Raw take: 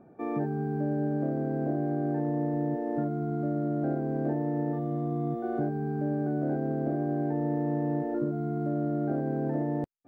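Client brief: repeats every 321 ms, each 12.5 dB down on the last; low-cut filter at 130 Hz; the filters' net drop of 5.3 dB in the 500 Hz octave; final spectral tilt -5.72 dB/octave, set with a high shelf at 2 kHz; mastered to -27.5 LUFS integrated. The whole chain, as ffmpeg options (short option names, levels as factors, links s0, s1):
-af "highpass=130,equalizer=f=500:t=o:g=-7,highshelf=f=2000:g=-8,aecho=1:1:321|642|963:0.237|0.0569|0.0137,volume=2"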